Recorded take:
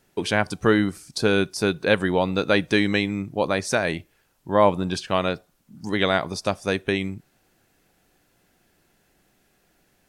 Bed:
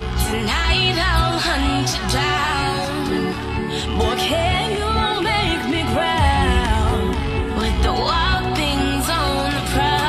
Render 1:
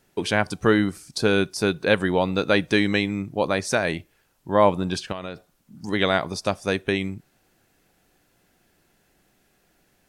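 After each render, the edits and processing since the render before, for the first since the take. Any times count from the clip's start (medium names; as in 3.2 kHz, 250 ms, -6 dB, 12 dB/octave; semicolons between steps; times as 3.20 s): 5.12–5.88 s: compression 8:1, threshold -28 dBFS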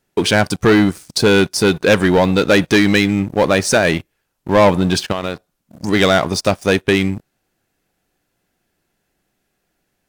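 waveshaping leveller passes 3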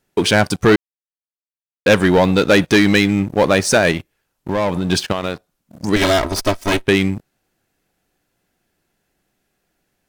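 0.76–1.86 s: mute; 3.91–4.90 s: compression, threshold -16 dBFS; 5.96–6.86 s: comb filter that takes the minimum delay 3.1 ms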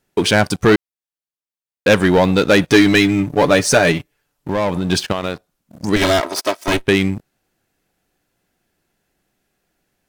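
2.69–4.49 s: comb 6.9 ms, depth 59%; 6.20–6.68 s: high-pass 370 Hz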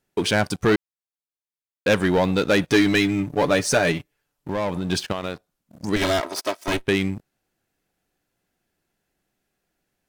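trim -6.5 dB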